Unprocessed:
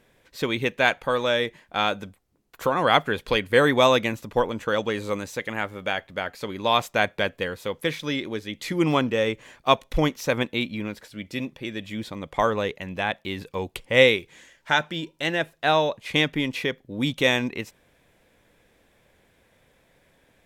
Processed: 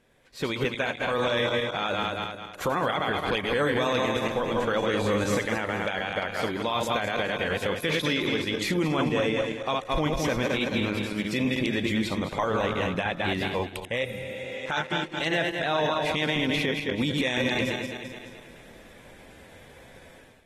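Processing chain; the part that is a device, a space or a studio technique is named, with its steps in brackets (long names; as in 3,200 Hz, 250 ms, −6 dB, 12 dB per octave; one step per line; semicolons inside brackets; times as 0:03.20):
feedback delay that plays each chunk backwards 107 ms, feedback 62%, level −5 dB
0:07.74–0:08.54: dynamic equaliser 2,700 Hz, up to +4 dB, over −39 dBFS, Q 0.92
0:14.06–0:14.60: healed spectral selection 230–8,400 Hz after
low-bitrate web radio (automatic gain control gain up to 13.5 dB; brickwall limiter −12.5 dBFS, peak gain reduction 11.5 dB; level −4.5 dB; AAC 32 kbit/s 44,100 Hz)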